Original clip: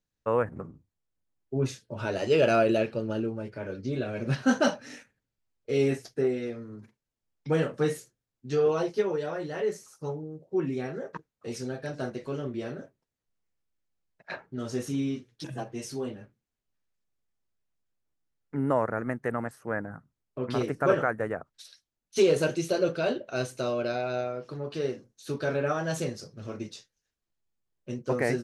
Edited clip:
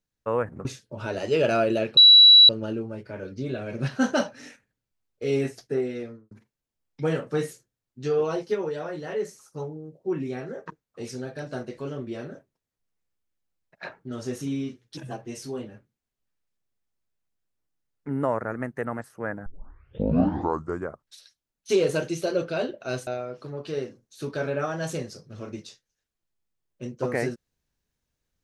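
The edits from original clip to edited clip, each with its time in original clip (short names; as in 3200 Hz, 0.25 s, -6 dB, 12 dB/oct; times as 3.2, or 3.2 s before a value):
0.65–1.64 cut
2.96 add tone 3920 Hz -8.5 dBFS 0.52 s
6.52–6.78 studio fade out
19.93 tape start 1.60 s
23.54–24.14 cut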